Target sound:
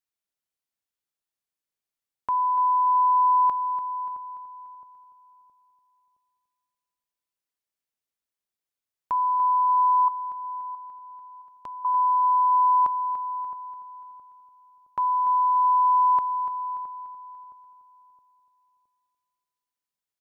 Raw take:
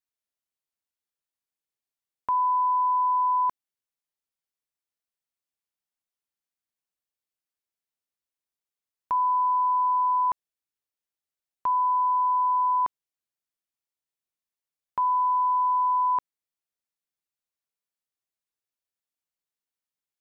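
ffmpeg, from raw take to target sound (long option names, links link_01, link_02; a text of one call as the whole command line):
ffmpeg -i in.wav -filter_complex "[0:a]asplit=2[link_01][link_02];[link_02]aecho=0:1:291|582|873|1164|1455:0.266|0.128|0.0613|0.0294|0.0141[link_03];[link_01][link_03]amix=inputs=2:normalize=0,asettb=1/sr,asplit=3[link_04][link_05][link_06];[link_04]atrim=end=10.084[link_07];[link_05]atrim=start=10.08:end=11.85,asetpts=PTS-STARTPTS,afade=type=in:duration=0.004:curve=qsin,afade=type=out:start_time=1.766:duration=0.004:curve=qsin,acompressor=threshold=-50dB:ratio=2[link_08];[link_06]atrim=start=11.846[link_09];[link_07][link_08]acrossfade=duration=0.004:curve1=hsin:curve2=qsin[link_10];[link_10][link_09]acrossfade=duration=0.004:curve1=qsin:curve2=hsin,asplit=2[link_11][link_12];[link_12]adelay=667,lowpass=frequency=940:poles=1,volume=-14dB,asplit=2[link_13][link_14];[link_14]adelay=667,lowpass=frequency=940:poles=1,volume=0.38,asplit=2[link_15][link_16];[link_16]adelay=667,lowpass=frequency=940:poles=1,volume=0.38,asplit=2[link_17][link_18];[link_18]adelay=667,lowpass=frequency=940:poles=1,volume=0.38[link_19];[link_13][link_15][link_17][link_19]amix=inputs=4:normalize=0[link_20];[link_11][link_20]amix=inputs=2:normalize=0" out.wav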